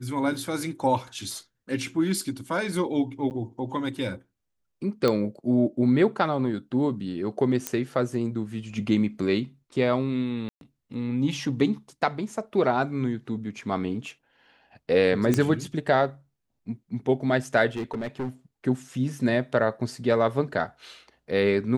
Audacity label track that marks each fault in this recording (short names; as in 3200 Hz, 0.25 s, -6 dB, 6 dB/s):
3.300000	3.310000	gap 9.2 ms
5.080000	5.080000	pop -11 dBFS
7.670000	7.670000	pop -9 dBFS
10.490000	10.610000	gap 0.122 s
15.340000	15.340000	pop -10 dBFS
17.760000	18.290000	clipped -26 dBFS